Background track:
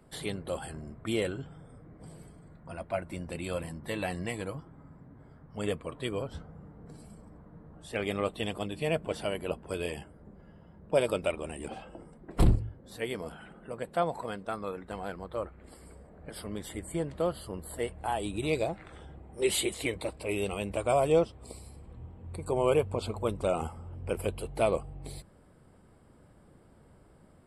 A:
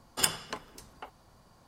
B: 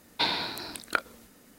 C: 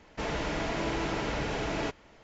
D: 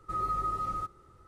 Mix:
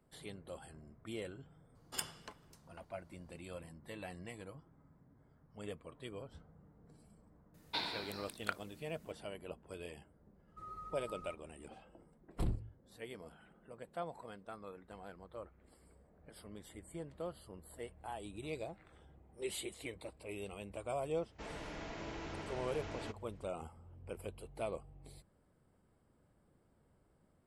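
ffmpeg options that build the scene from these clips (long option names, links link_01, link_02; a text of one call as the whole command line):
ffmpeg -i bed.wav -i cue0.wav -i cue1.wav -i cue2.wav -i cue3.wav -filter_complex "[0:a]volume=-13.5dB[link_01];[1:a]atrim=end=1.67,asetpts=PTS-STARTPTS,volume=-13.5dB,afade=type=in:duration=0.004:curve=hsin,afade=type=out:start_time=1.666:duration=0.004:curve=hsin,adelay=1750[link_02];[2:a]atrim=end=1.58,asetpts=PTS-STARTPTS,volume=-11.5dB,afade=type=in:duration=0.004:curve=hsin,afade=type=out:start_time=1.576:duration=0.004:curve=hsin,adelay=332514S[link_03];[4:a]atrim=end=1.27,asetpts=PTS-STARTPTS,volume=-17.5dB,afade=type=in:duration=0.004:curve=hsin,afade=type=out:start_time=1.266:duration=0.004:curve=hsin,adelay=10480[link_04];[3:a]atrim=end=2.23,asetpts=PTS-STARTPTS,volume=-14dB,afade=type=in:duration=0.004:curve=hsin,afade=type=out:start_time=2.226:duration=0.004:curve=hsin,adelay=21210[link_05];[link_01][link_02][link_03][link_04][link_05]amix=inputs=5:normalize=0" out.wav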